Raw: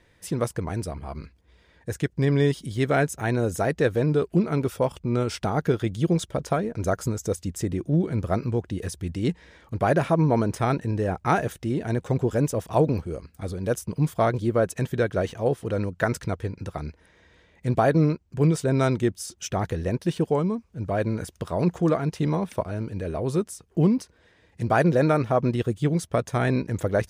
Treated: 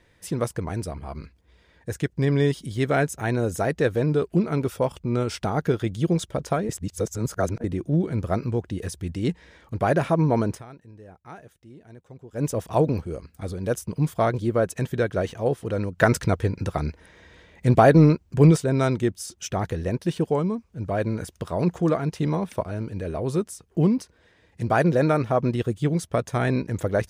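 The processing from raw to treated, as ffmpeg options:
-filter_complex "[0:a]asplit=3[s0][s1][s2];[s0]afade=t=out:st=15.97:d=0.02[s3];[s1]acontrast=60,afade=t=in:st=15.97:d=0.02,afade=t=out:st=18.56:d=0.02[s4];[s2]afade=t=in:st=18.56:d=0.02[s5];[s3][s4][s5]amix=inputs=3:normalize=0,asplit=5[s6][s7][s8][s9][s10];[s6]atrim=end=6.692[s11];[s7]atrim=start=6.688:end=7.642,asetpts=PTS-STARTPTS,areverse[s12];[s8]atrim=start=7.638:end=10.63,asetpts=PTS-STARTPTS,afade=t=out:st=2.862:d=0.13:silence=0.0944061[s13];[s9]atrim=start=10.63:end=12.33,asetpts=PTS-STARTPTS,volume=0.0944[s14];[s10]atrim=start=12.33,asetpts=PTS-STARTPTS,afade=t=in:d=0.13:silence=0.0944061[s15];[s11][s12]acrossfade=d=0.004:c1=hsin:c2=hsin[s16];[s13][s14][s15]concat=n=3:v=0:a=1[s17];[s16][s17]acrossfade=d=0.004:c1=hsin:c2=hsin"

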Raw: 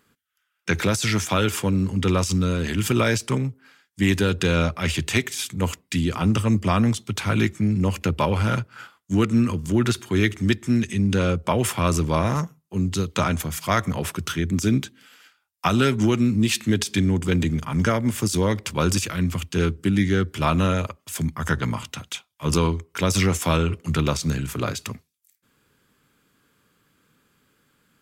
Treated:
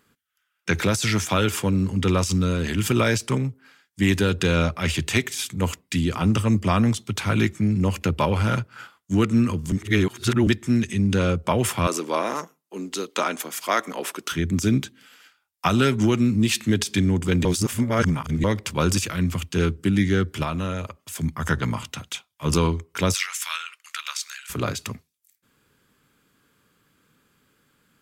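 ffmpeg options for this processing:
-filter_complex "[0:a]asettb=1/sr,asplit=3[s0][s1][s2];[s0]atrim=end=11.874[s3];[s1]atrim=start=11.87:end=14.32,asetpts=PTS-STARTPTS,afade=t=in:d=0.004:c=qsin,afade=t=out:st=2.446:d=0.004:c=qsin,highpass=f=280:w=0.5412,highpass=f=280:w=1.3066[s4];[s2]atrim=start=14.316[s5];[s3][s4]acrossfade=d=0.004:c1=hsin:c2=qsin[s6];[s6][s5]acrossfade=d=0.004:c1=qsin:c2=hsin,asettb=1/sr,asplit=3[s7][s8][s9];[s7]atrim=end=20.434[s10];[s8]atrim=start=20.43:end=21.23,asetpts=PTS-STARTPTS,afade=t=in:d=0.004:c=qsin,afade=t=out:st=0.796:d=0.004:c=qsin,acompressor=threshold=0.0178:ratio=1.5:attack=3.2:release=140:knee=1:detection=peak[s11];[s9]atrim=start=21.226[s12];[s10][s11]acrossfade=d=0.004:c1=hsin:c2=qsin[s13];[s13][s12]acrossfade=d=0.004:c1=qsin:c2=hsin,asettb=1/sr,asplit=3[s14][s15][s16];[s14]atrim=end=23.144[s17];[s15]atrim=start=23.14:end=24.5,asetpts=PTS-STARTPTS,afade=t=in:d=0.004:c=qsin,afade=t=out:st=1.356:d=0.004:c=qsin,highpass=f=1400:w=0.5412,highpass=f=1400:w=1.3066[s18];[s16]atrim=start=24.496[s19];[s17][s18]acrossfade=d=0.004:c1=hsin:c2=qsin[s20];[s20][s19]acrossfade=d=0.004:c1=qsin:c2=hsin,asplit=5[s21][s22][s23][s24][s25];[s21]atrim=end=9.722[s26];[s22]atrim=start=9.718:end=10.472,asetpts=PTS-STARTPTS,areverse[s27];[s23]atrim=start=10.468:end=17.452[s28];[s24]atrim=start=17.448:end=18.442,asetpts=PTS-STARTPTS,areverse[s29];[s25]atrim=start=18.438[s30];[s26][s27]acrossfade=d=0.004:c1=hsin:c2=hsin[s31];[s31][s28]acrossfade=d=0.004:c1=hsin:c2=hsin[s32];[s32][s29]acrossfade=d=0.004:c1=hsin:c2=hsin[s33];[s33][s30]acrossfade=d=0.004:c1=hsin:c2=hsin"

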